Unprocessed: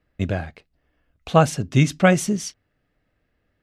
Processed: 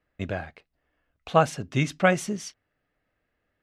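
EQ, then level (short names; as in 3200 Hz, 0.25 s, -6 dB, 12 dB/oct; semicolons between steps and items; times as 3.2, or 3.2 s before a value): low shelf 430 Hz -10 dB; high shelf 3500 Hz -9.5 dB; 0.0 dB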